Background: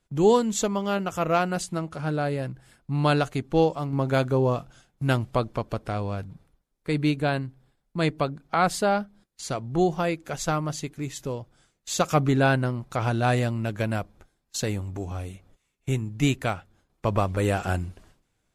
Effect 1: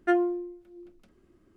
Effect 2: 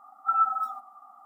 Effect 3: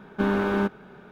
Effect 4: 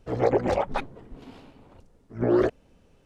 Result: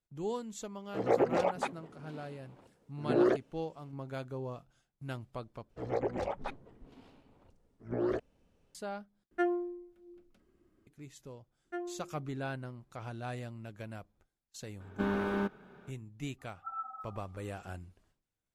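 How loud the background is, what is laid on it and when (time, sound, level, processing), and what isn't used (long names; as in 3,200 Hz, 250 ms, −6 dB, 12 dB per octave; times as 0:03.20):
background −17.5 dB
0:00.87: mix in 4 −5 dB + high-pass filter 170 Hz
0:05.70: overwrite with 4 −11 dB
0:09.31: overwrite with 1 −7 dB
0:11.65: mix in 1 −16 dB
0:14.80: mix in 3 −8.5 dB
0:16.38: mix in 2 −13.5 dB, fades 0.02 s + high-shelf EQ 2,100 Hz −12 dB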